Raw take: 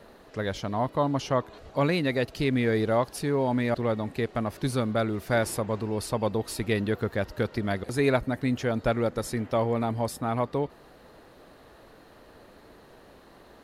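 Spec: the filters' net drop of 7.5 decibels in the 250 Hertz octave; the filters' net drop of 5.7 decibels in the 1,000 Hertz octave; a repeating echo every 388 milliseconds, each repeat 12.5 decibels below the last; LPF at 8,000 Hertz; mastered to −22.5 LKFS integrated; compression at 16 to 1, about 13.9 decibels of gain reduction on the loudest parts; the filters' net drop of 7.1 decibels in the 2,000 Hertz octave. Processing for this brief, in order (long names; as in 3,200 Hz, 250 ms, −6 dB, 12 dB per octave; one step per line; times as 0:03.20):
low-pass filter 8,000 Hz
parametric band 250 Hz −9 dB
parametric band 1,000 Hz −5.5 dB
parametric band 2,000 Hz −7 dB
downward compressor 16 to 1, threshold −37 dBFS
repeating echo 388 ms, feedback 24%, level −12.5 dB
level +20 dB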